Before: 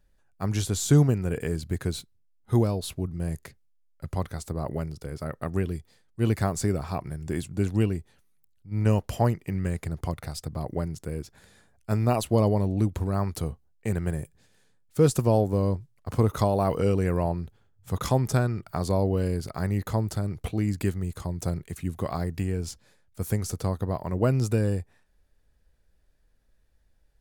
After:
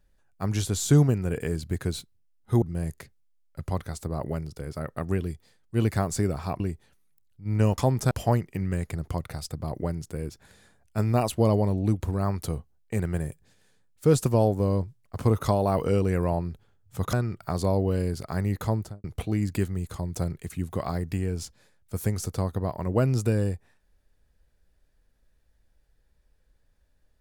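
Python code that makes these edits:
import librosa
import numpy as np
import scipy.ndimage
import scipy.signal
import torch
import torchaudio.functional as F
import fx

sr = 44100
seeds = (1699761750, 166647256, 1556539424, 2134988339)

y = fx.studio_fade_out(x, sr, start_s=19.99, length_s=0.31)
y = fx.edit(y, sr, fx.cut(start_s=2.62, length_s=0.45),
    fx.cut(start_s=7.05, length_s=0.81),
    fx.move(start_s=18.06, length_s=0.33, to_s=9.04), tone=tone)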